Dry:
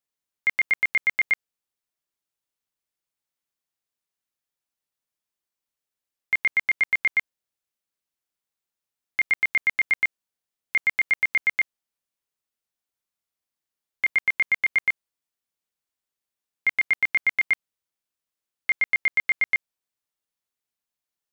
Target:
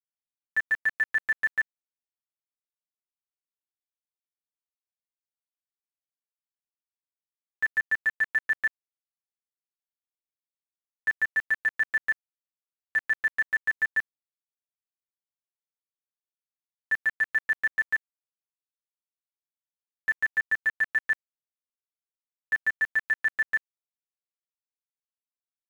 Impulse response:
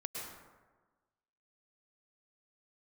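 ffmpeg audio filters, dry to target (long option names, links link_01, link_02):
-af "aeval=exprs='val(0)*gte(abs(val(0)),0.0224)':channel_layout=same,aecho=1:1:6.1:0.85,asetrate=36603,aresample=44100,volume=-8.5dB"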